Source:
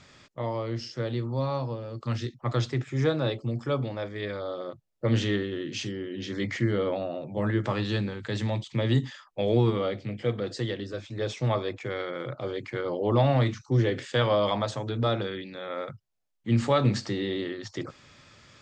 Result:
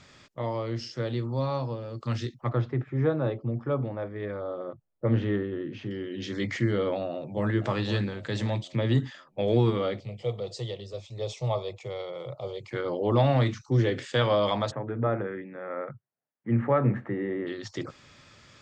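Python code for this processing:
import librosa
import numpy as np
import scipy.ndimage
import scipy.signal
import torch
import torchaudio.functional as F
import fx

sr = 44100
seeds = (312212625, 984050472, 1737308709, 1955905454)

y = fx.lowpass(x, sr, hz=1500.0, slope=12, at=(2.49, 5.91))
y = fx.echo_throw(y, sr, start_s=7.1, length_s=0.43, ms=510, feedback_pct=50, wet_db=-10.0)
y = fx.high_shelf(y, sr, hz=4000.0, db=-7.0, at=(8.75, 9.48))
y = fx.fixed_phaser(y, sr, hz=660.0, stages=4, at=(10.0, 12.71))
y = fx.ellip_bandpass(y, sr, low_hz=120.0, high_hz=1900.0, order=3, stop_db=40, at=(14.7, 17.46), fade=0.02)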